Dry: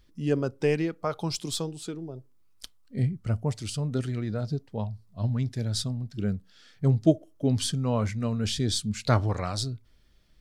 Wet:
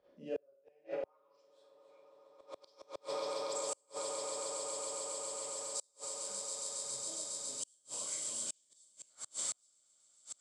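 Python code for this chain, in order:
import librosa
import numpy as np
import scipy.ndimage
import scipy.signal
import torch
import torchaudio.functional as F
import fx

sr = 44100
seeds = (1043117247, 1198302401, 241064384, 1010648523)

p1 = fx.low_shelf(x, sr, hz=380.0, db=-7.5)
p2 = fx.rev_schroeder(p1, sr, rt60_s=0.59, comb_ms=31, drr_db=-9.5)
p3 = fx.filter_sweep_bandpass(p2, sr, from_hz=570.0, to_hz=7700.0, start_s=0.67, end_s=3.13, q=7.5)
p4 = p3 + fx.echo_swell(p3, sr, ms=137, loudest=8, wet_db=-10.5, dry=0)
p5 = fx.gate_flip(p4, sr, shuts_db=-27.0, range_db=-39)
p6 = fx.band_squash(p5, sr, depth_pct=40)
y = p6 * 10.0 ** (2.0 / 20.0)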